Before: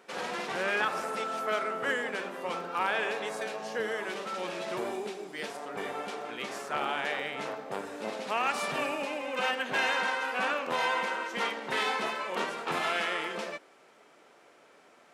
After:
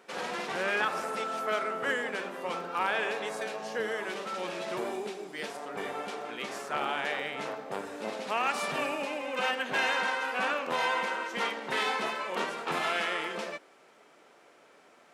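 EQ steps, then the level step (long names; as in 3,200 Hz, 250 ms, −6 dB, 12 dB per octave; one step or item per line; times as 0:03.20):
mains-hum notches 60/120 Hz
0.0 dB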